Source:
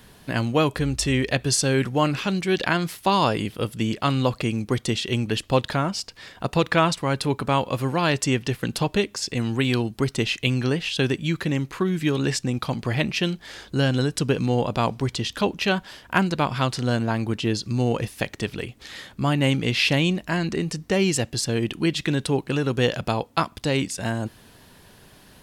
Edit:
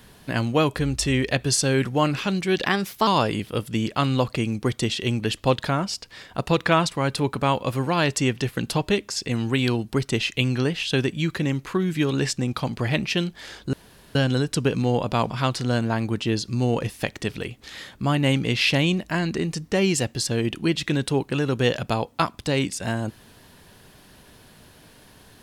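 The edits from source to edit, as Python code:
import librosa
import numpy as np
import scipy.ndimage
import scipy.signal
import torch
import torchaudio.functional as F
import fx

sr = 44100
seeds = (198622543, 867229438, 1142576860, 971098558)

y = fx.edit(x, sr, fx.speed_span(start_s=2.65, length_s=0.48, speed=1.14),
    fx.insert_room_tone(at_s=13.79, length_s=0.42),
    fx.cut(start_s=14.94, length_s=1.54), tone=tone)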